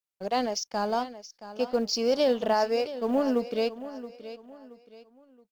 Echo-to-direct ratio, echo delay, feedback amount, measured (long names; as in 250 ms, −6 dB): −13.5 dB, 674 ms, 35%